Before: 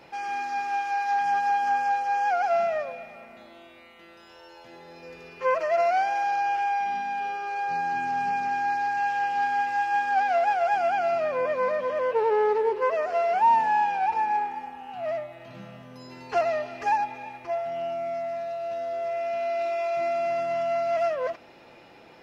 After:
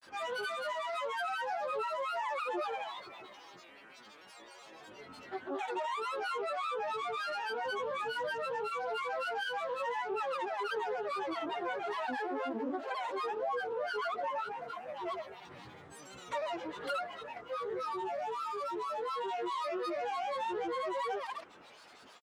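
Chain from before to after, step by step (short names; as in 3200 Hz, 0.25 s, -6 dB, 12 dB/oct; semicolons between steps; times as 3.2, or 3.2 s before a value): low shelf 400 Hz -11.5 dB; compressor 6:1, threshold -31 dBFS, peak gain reduction 12 dB; grains 0.1 s, grains 27/s, pitch spread up and down by 12 st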